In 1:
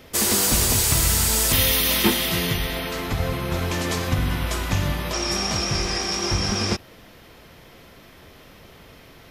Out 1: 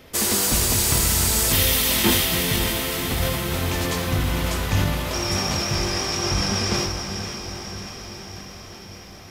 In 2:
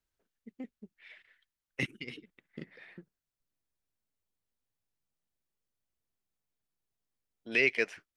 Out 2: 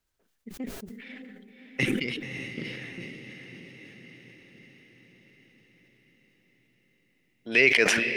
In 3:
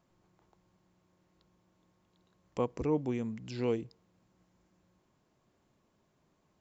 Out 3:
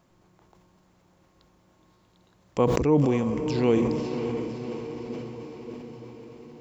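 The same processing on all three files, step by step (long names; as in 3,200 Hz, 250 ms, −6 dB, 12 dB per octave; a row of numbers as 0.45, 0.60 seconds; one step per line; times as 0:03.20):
on a send: feedback delay with all-pass diffusion 584 ms, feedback 62%, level −7 dB
on the sum: level that may fall only so fast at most 33 dB per second
normalise the peak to −6 dBFS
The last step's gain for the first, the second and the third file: −1.0, +6.5, +9.0 decibels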